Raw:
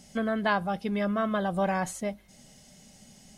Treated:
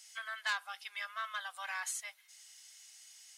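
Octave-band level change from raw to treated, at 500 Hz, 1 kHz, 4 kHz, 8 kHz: −29.5, −12.0, −0.5, +1.0 decibels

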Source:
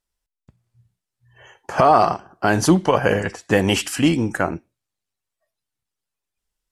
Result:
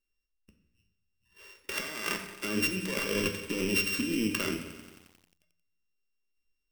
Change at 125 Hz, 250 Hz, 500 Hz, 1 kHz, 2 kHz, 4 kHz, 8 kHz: −17.0, −12.5, −16.0, −24.5, −7.5, −5.5, −7.5 decibels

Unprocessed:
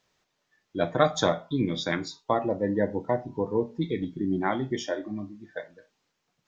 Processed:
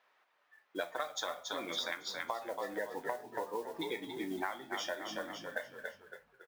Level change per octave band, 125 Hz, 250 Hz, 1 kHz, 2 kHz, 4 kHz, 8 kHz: −26.0 dB, −16.5 dB, −9.0 dB, −4.0 dB, −3.5 dB, can't be measured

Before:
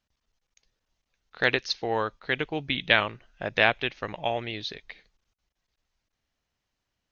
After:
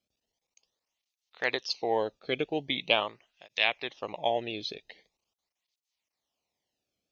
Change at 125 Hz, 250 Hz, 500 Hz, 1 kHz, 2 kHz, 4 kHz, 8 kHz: −9.5 dB, −3.0 dB, −1.5 dB, −3.0 dB, −7.0 dB, −2.0 dB, can't be measured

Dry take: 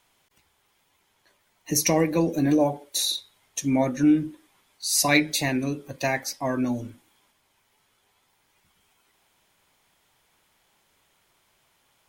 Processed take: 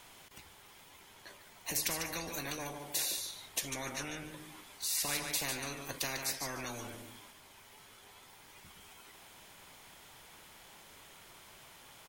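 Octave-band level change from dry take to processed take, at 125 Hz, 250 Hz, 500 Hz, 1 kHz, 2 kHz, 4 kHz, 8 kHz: −17.5, −23.5, −18.0, −12.5, −11.0, −8.5, −8.0 decibels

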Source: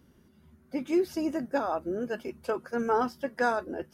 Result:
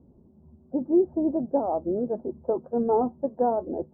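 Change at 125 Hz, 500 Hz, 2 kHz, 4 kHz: +5.0 dB, +5.0 dB, below −25 dB, below −35 dB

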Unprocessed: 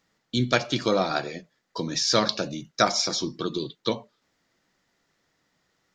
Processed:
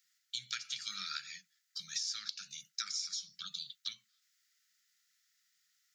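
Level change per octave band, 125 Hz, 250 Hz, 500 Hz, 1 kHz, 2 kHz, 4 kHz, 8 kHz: below −35 dB, below −35 dB, below −40 dB, −24.5 dB, −16.0 dB, −10.5 dB, −9.0 dB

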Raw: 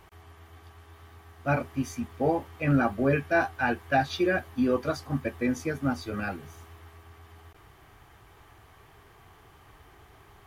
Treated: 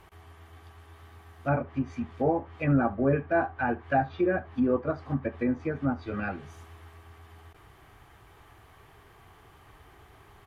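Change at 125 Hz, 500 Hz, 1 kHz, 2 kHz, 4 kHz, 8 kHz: 0.0 dB, 0.0 dB, −0.5 dB, −4.5 dB, below −10 dB, below −15 dB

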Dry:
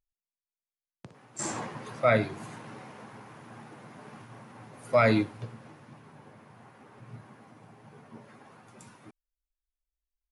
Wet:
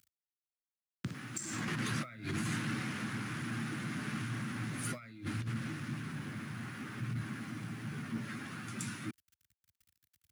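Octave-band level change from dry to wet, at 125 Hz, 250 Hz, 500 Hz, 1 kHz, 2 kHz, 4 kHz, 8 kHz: 0.0, −2.5, −20.0, −10.0, −4.0, +0.5, −0.5 decibels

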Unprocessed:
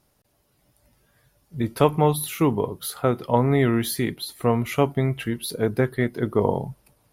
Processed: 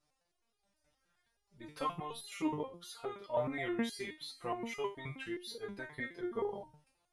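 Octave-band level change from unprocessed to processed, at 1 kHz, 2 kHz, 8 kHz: −14.5, −11.0, −19.0 decibels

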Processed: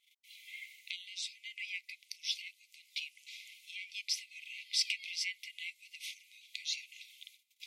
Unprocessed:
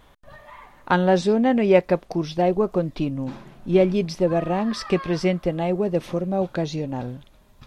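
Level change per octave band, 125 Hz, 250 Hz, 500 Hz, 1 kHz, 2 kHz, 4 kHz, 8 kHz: below −40 dB, below −40 dB, below −40 dB, below −40 dB, −9.0 dB, +0.5 dB, can't be measured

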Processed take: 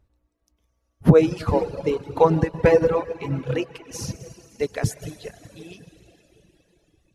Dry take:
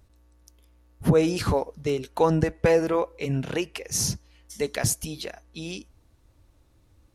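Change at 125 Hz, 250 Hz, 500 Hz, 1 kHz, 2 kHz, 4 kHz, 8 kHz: +4.0, +3.0, +4.0, +3.5, +0.5, −6.0, −9.5 decibels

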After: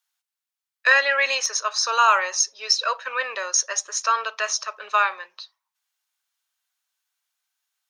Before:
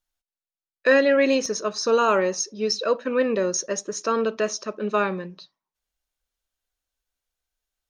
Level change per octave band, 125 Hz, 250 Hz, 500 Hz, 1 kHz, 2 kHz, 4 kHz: below −40 dB, below −30 dB, −10.5 dB, +5.5 dB, +6.5 dB, +6.5 dB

